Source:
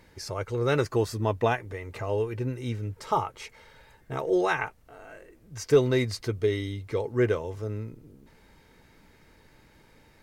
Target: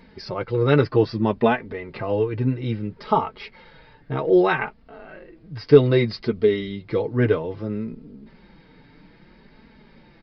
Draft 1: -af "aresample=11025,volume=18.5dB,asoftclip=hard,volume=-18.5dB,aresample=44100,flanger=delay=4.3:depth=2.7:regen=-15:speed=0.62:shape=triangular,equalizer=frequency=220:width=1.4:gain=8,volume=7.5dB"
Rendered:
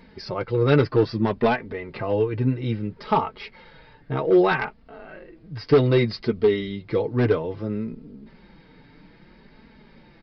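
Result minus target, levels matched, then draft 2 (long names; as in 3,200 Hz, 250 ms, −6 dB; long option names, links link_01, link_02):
gain into a clipping stage and back: distortion +32 dB
-af "aresample=11025,volume=10.5dB,asoftclip=hard,volume=-10.5dB,aresample=44100,flanger=delay=4.3:depth=2.7:regen=-15:speed=0.62:shape=triangular,equalizer=frequency=220:width=1.4:gain=8,volume=7.5dB"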